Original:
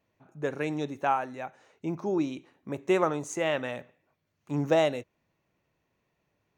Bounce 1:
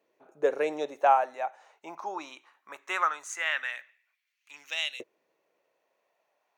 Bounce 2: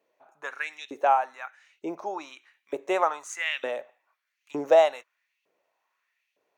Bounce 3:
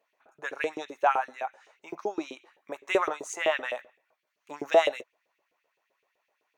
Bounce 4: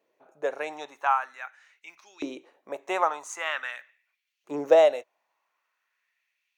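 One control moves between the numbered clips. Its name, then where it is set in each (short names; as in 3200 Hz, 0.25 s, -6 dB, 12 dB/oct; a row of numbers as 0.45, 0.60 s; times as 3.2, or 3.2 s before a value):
LFO high-pass, rate: 0.2, 1.1, 7.8, 0.45 Hz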